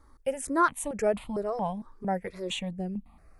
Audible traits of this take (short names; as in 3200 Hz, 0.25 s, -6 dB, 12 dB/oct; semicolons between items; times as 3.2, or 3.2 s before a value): notches that jump at a steady rate 4.4 Hz 710–1600 Hz